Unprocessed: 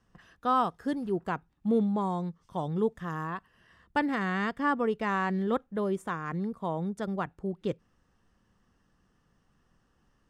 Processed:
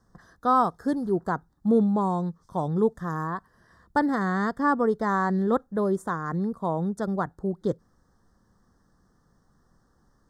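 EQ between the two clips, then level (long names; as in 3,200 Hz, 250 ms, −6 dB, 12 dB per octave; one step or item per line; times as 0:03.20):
Butterworth band-reject 2,600 Hz, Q 1.1
+5.0 dB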